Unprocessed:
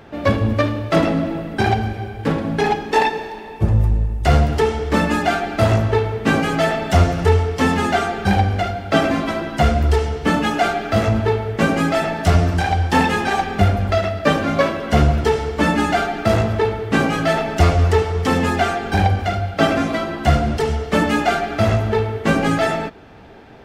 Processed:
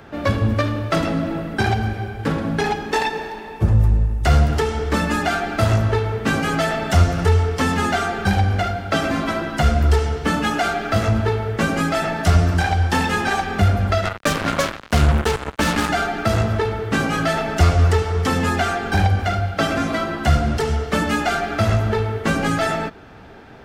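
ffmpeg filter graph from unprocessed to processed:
-filter_complex "[0:a]asettb=1/sr,asplit=3[s0][s1][s2];[s0]atrim=end=14.054[s3];[s1]atrim=start=14.05:end=15.89,asetpts=PTS-STARTPTS,afade=t=in:d=0.004:c=qsin,afade=t=out:st=1.836:d=0.004:c=qsin,asuperstop=centerf=4700:order=4:qfactor=1.4,acrusher=bits=2:mix=0:aa=0.5[s4];[s2]atrim=start=15.886[s5];[s3][s4]acrossfade=d=0.004:c1=hsin:c2=qsin[s6];[s6][s5]acrossfade=d=0.004:c1=qsin:c2=hsin,bass=f=250:g=2,treble=f=4000:g=3,acrossover=split=120|3000[s7][s8][s9];[s8]acompressor=threshold=0.141:ratio=6[s10];[s7][s10][s9]amix=inputs=3:normalize=0,equalizer=f=1400:t=o:w=0.7:g=5,volume=0.891"

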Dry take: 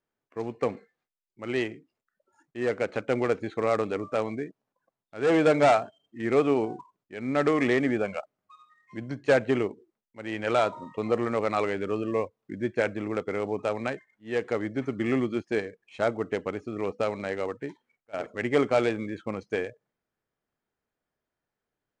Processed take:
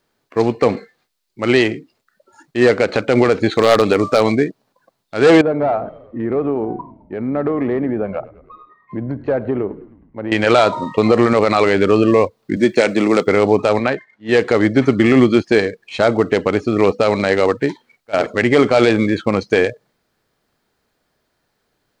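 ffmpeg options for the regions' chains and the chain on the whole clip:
-filter_complex "[0:a]asettb=1/sr,asplit=3[s0][s1][s2];[s0]atrim=end=3.514[s3];[s1]atrim=start=3.51:end=4.32,asetpts=PTS-STARTPTS,afade=t=in:d=0.004:c=qsin,afade=t=out:st=0.806:d=0.004:c=qsin,acrossover=split=3700[s4][s5];[s5]acompressor=threshold=0.00178:ratio=4:attack=1:release=60[s6];[s4][s6]amix=inputs=2:normalize=0,highshelf=f=3800:g=8.5,aeval=exprs='0.15*(abs(mod(val(0)/0.15+3,4)-2)-1)':c=same[s7];[s2]atrim=start=4.316[s8];[s3][s7]acrossfade=d=0.004:c1=hsin:c2=qsin[s9];[s9][s8]acrossfade=d=0.004:c1=qsin:c2=hsin,asettb=1/sr,asplit=3[s10][s11][s12];[s10]atrim=end=5.414[s13];[s11]atrim=start=5.41:end=10.32,asetpts=PTS-STARTPTS,afade=t=in:d=0.004:c=qsin,afade=t=out:st=4.906:d=0.004:c=qsin,lowpass=1000,acompressor=threshold=0.0112:ratio=2.5:attack=3.2:release=140:knee=1:detection=peak,asplit=6[s14][s15][s16][s17][s18][s19];[s15]adelay=105,afreqshift=-42,volume=0.1[s20];[s16]adelay=210,afreqshift=-84,volume=0.061[s21];[s17]adelay=315,afreqshift=-126,volume=0.0372[s22];[s18]adelay=420,afreqshift=-168,volume=0.0226[s23];[s19]adelay=525,afreqshift=-210,volume=0.0138[s24];[s14][s20][s21][s22][s23][s24]amix=inputs=6:normalize=0,atrim=end_sample=216531[s25];[s12]atrim=start=10.316[s26];[s13][s25]acrossfade=d=0.004:c1=hsin:c2=qsin[s27];[s27][s26]acrossfade=d=0.004:c1=qsin:c2=hsin,asettb=1/sr,asplit=3[s28][s29][s30];[s28]atrim=end=12.564[s31];[s29]atrim=start=12.56:end=13.27,asetpts=PTS-STARTPTS,afade=t=in:d=0.004:c=qsin,afade=t=out:st=0.706:d=0.004:c=qsin,highpass=f=150:w=0.5412,highpass=f=150:w=1.3066,highshelf=f=5200:g=10,bandreject=f=1600:w=11[s32];[s30]atrim=start=13.266[s33];[s31][s32]acrossfade=d=0.004:c1=hsin:c2=qsin[s34];[s34][s33]acrossfade=d=0.004:c1=qsin:c2=hsin,asettb=1/sr,asplit=3[s35][s36][s37];[s35]atrim=end=13.794[s38];[s36]atrim=start=13.79:end=14.29,asetpts=PTS-STARTPTS,afade=t=in:d=0.004:c=qsin,afade=t=out:st=0.496:d=0.004:c=qsin,highpass=f=790:p=1,aemphasis=mode=reproduction:type=riaa[s39];[s37]atrim=start=14.286[s40];[s38][s39]acrossfade=d=0.004:c1=hsin:c2=qsin[s41];[s41][s40]acrossfade=d=0.004:c1=qsin:c2=hsin,equalizer=f=4300:w=2.5:g=7.5,alimiter=level_in=8.41:limit=0.891:release=50:level=0:latency=1,volume=0.891"

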